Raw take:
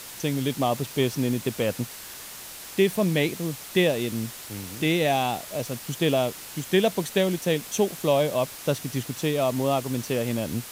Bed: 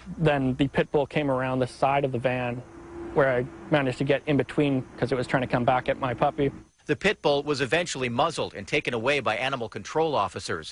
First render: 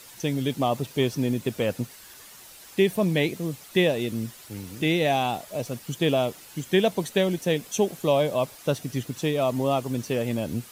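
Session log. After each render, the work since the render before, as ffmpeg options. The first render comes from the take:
-af "afftdn=nr=9:nf=-41"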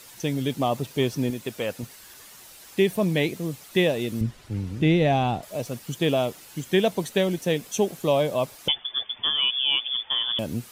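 -filter_complex "[0:a]asettb=1/sr,asplit=3[s0][s1][s2];[s0]atrim=end=1.304[s3];[s1]atrim=start=1.3:end=1.83,asetpts=PTS-STARTPTS,afade=t=in:d=0.004:c=qsin,afade=t=out:st=0.526:d=0.004:c=qsin,lowshelf=f=370:g=-8.5[s4];[s2]atrim=start=1.826[s5];[s3][s4]acrossfade=d=0.004:c1=hsin:c2=qsin[s6];[s6][s5]acrossfade=d=0.004:c1=qsin:c2=hsin,asettb=1/sr,asplit=3[s7][s8][s9];[s7]atrim=end=4.214[s10];[s8]atrim=start=4.21:end=5.43,asetpts=PTS-STARTPTS,afade=t=in:d=0.004:c=qsin,afade=t=out:st=1.216:d=0.004:c=qsin,aemphasis=mode=reproduction:type=bsi[s11];[s9]atrim=start=5.426[s12];[s10][s11]acrossfade=d=0.004:c1=hsin:c2=qsin[s13];[s13][s12]acrossfade=d=0.004:c1=qsin:c2=hsin,asettb=1/sr,asplit=3[s14][s15][s16];[s14]atrim=end=8.684[s17];[s15]atrim=start=8.68:end=10.39,asetpts=PTS-STARTPTS,afade=t=in:d=0.004:c=qsin,afade=t=out:st=1.706:d=0.004:c=qsin,lowpass=f=3100:t=q:w=0.5098,lowpass=f=3100:t=q:w=0.6013,lowpass=f=3100:t=q:w=0.9,lowpass=f=3100:t=q:w=2.563,afreqshift=-3600[s18];[s16]atrim=start=10.386[s19];[s17][s18]acrossfade=d=0.004:c1=hsin:c2=qsin[s20];[s20][s19]acrossfade=d=0.004:c1=qsin:c2=hsin"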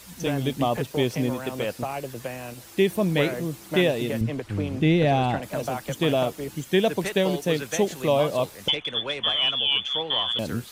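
-filter_complex "[1:a]volume=0.376[s0];[0:a][s0]amix=inputs=2:normalize=0"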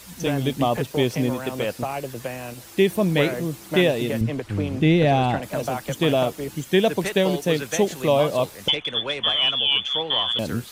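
-af "volume=1.33"

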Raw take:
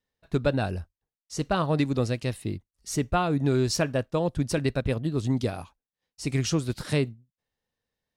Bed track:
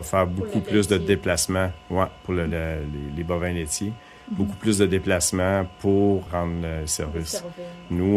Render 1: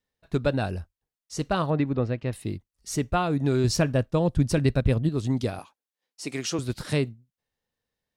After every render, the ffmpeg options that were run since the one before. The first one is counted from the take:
-filter_complex "[0:a]asettb=1/sr,asplit=3[s0][s1][s2];[s0]atrim=end=1.704[s3];[s1]atrim=start=1.7:end=2.33,asetpts=PTS-STARTPTS,afade=t=in:d=0.004:c=qsin,afade=t=out:st=0.626:d=0.004:c=qsin,lowpass=2100[s4];[s2]atrim=start=2.326[s5];[s3][s4]acrossfade=d=0.004:c1=hsin:c2=qsin[s6];[s6][s5]acrossfade=d=0.004:c1=qsin:c2=hsin,asettb=1/sr,asplit=3[s7][s8][s9];[s7]atrim=end=3.644[s10];[s8]atrim=start=3.64:end=5.09,asetpts=PTS-STARTPTS,afade=t=in:d=0.004:c=qsin,afade=t=out:st=1.446:d=0.004:c=qsin,lowshelf=f=210:g=8.5[s11];[s9]atrim=start=5.086[s12];[s10][s11]acrossfade=d=0.004:c1=hsin:c2=qsin[s13];[s13][s12]acrossfade=d=0.004:c1=qsin:c2=hsin,asettb=1/sr,asplit=3[s14][s15][s16];[s14]atrim=end=5.594[s17];[s15]atrim=start=5.59:end=6.59,asetpts=PTS-STARTPTS,afade=t=in:d=0.004:c=qsin,afade=t=out:st=0.996:d=0.004:c=qsin,highpass=280[s18];[s16]atrim=start=6.586[s19];[s17][s18]acrossfade=d=0.004:c1=hsin:c2=qsin[s20];[s20][s19]acrossfade=d=0.004:c1=qsin:c2=hsin"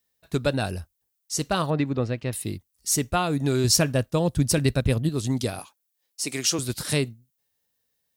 -af "highpass=45,aemphasis=mode=production:type=75kf"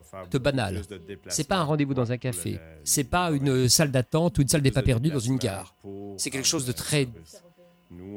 -filter_complex "[1:a]volume=0.106[s0];[0:a][s0]amix=inputs=2:normalize=0"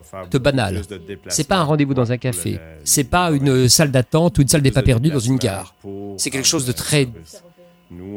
-af "volume=2.51,alimiter=limit=0.794:level=0:latency=1"

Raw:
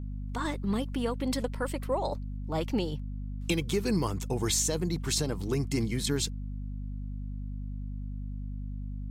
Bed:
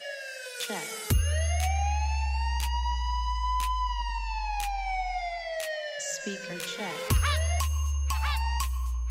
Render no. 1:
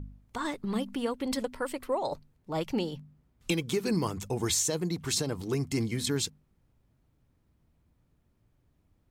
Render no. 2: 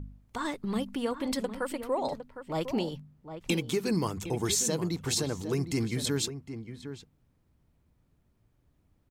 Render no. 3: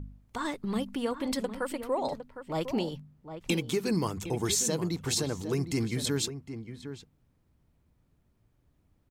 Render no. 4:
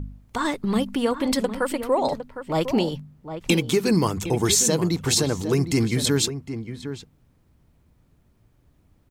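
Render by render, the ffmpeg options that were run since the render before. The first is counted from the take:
-af "bandreject=f=50:t=h:w=4,bandreject=f=100:t=h:w=4,bandreject=f=150:t=h:w=4,bandreject=f=200:t=h:w=4,bandreject=f=250:t=h:w=4"
-filter_complex "[0:a]asplit=2[s0][s1];[s1]adelay=758,volume=0.316,highshelf=f=4000:g=-17.1[s2];[s0][s2]amix=inputs=2:normalize=0"
-af anull
-af "volume=2.66"

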